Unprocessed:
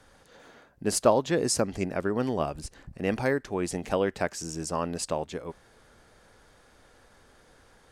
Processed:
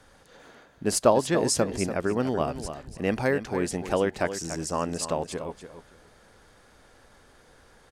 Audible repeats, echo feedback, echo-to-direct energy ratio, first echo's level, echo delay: 2, 18%, −10.5 dB, −10.5 dB, 289 ms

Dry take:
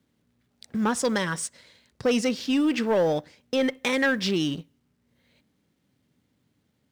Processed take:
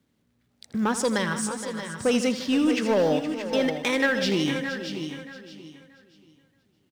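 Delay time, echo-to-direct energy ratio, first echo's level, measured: 82 ms, −5.5 dB, −13.0 dB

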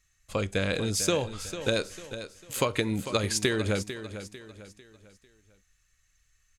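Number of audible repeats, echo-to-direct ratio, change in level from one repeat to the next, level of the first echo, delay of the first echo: 3, −11.0 dB, −8.0 dB, −11.5 dB, 448 ms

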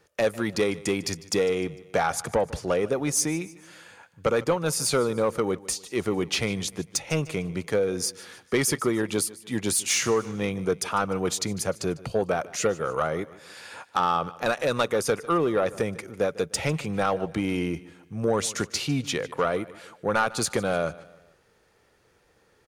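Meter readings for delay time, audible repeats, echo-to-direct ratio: 150 ms, 3, −18.5 dB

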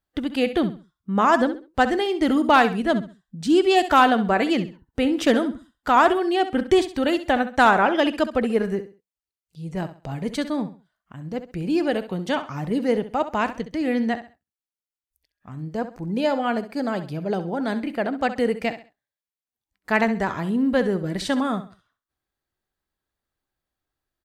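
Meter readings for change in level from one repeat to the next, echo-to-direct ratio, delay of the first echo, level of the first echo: −11.0 dB, −12.0 dB, 66 ms, −12.5 dB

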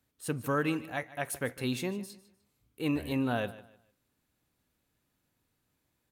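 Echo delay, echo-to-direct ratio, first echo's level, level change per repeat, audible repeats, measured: 151 ms, −17.0 dB, −17.5 dB, −11.0 dB, 2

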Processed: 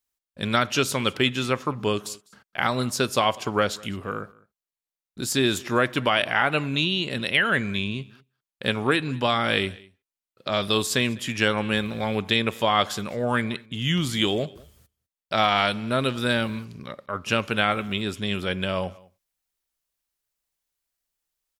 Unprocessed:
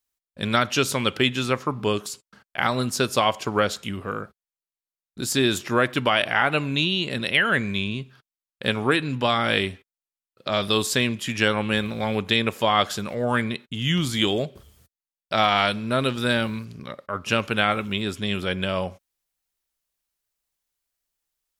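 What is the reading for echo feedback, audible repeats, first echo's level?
repeats not evenly spaced, 1, −24.0 dB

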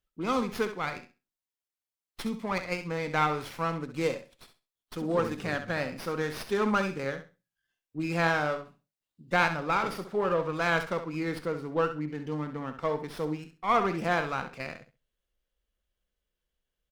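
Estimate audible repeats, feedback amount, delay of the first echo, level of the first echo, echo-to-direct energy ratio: 2, 20%, 66 ms, −10.0 dB, −10.0 dB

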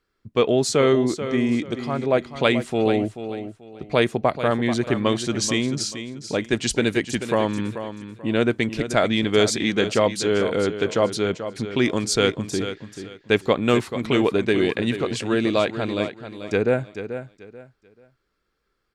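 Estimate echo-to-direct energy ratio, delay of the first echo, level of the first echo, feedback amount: −10.0 dB, 436 ms, −10.5 dB, 26%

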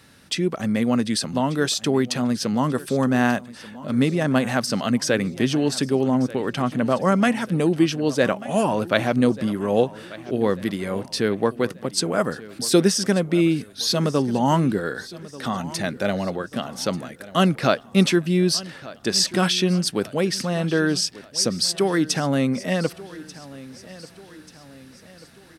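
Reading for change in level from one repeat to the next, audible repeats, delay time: −6.5 dB, 3, 1,188 ms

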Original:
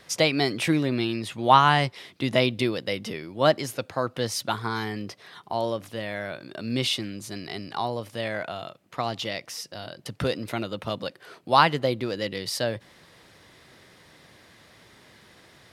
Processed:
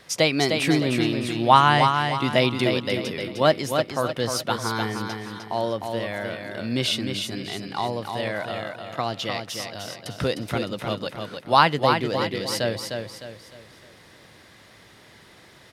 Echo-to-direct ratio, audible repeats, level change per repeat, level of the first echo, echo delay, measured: −5.0 dB, 4, −8.5 dB, −5.5 dB, 305 ms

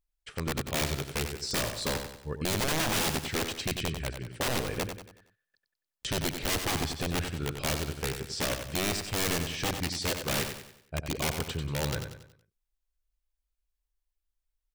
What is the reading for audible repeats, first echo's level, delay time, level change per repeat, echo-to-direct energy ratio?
4, −7.5 dB, 93 ms, −7.5 dB, −6.5 dB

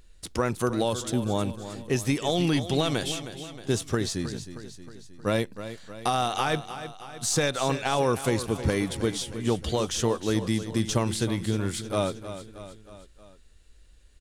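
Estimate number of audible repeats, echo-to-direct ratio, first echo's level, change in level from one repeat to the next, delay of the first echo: 4, −10.5 dB, −12.0 dB, −5.0 dB, 314 ms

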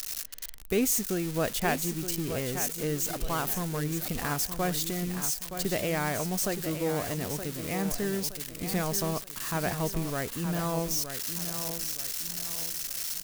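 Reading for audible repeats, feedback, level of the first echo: 4, 37%, −9.0 dB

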